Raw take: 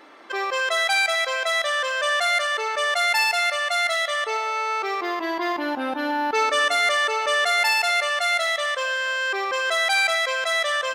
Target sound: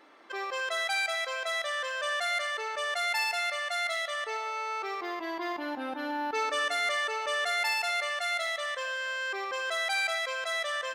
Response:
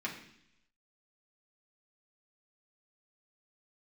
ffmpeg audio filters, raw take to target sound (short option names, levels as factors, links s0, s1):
-filter_complex "[0:a]asplit=2[s0][s1];[1:a]atrim=start_sample=2205,adelay=109[s2];[s1][s2]afir=irnorm=-1:irlink=0,volume=0.0944[s3];[s0][s3]amix=inputs=2:normalize=0,volume=0.355"